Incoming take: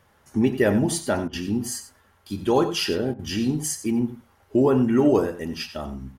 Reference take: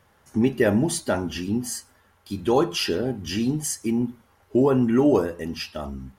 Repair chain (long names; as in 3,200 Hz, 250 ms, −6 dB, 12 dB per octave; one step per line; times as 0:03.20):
repair the gap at 0:01.28/0:03.14, 50 ms
echo removal 91 ms −12.5 dB